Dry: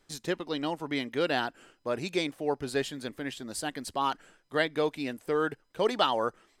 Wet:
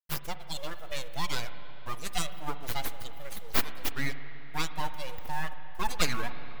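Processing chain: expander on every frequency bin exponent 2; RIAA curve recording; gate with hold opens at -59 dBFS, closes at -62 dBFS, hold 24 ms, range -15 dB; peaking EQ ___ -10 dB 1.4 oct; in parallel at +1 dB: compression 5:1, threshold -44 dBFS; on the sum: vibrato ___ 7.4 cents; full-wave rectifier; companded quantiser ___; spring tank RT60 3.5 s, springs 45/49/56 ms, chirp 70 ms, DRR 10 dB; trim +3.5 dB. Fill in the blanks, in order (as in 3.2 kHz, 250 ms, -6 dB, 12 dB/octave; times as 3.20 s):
1.8 kHz, 4.3 Hz, 6-bit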